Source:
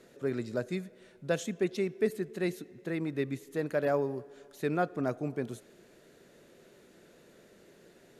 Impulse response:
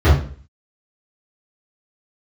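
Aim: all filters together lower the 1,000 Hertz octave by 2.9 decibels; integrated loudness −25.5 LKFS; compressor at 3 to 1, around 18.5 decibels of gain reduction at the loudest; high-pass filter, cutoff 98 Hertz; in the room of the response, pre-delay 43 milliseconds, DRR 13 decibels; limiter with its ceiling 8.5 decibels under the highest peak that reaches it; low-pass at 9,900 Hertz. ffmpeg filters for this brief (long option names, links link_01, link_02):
-filter_complex "[0:a]highpass=98,lowpass=9900,equalizer=frequency=1000:width_type=o:gain=-5,acompressor=threshold=-51dB:ratio=3,alimiter=level_in=18.5dB:limit=-24dB:level=0:latency=1,volume=-18.5dB,asplit=2[link_01][link_02];[1:a]atrim=start_sample=2205,adelay=43[link_03];[link_02][link_03]afir=irnorm=-1:irlink=0,volume=-36dB[link_04];[link_01][link_04]amix=inputs=2:normalize=0,volume=27dB"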